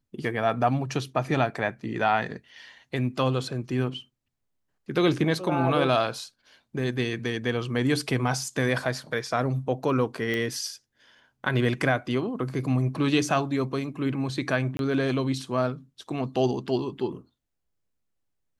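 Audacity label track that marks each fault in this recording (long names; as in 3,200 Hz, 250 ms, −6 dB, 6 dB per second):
10.340000	10.340000	click −16 dBFS
14.770000	14.790000	drop-out 22 ms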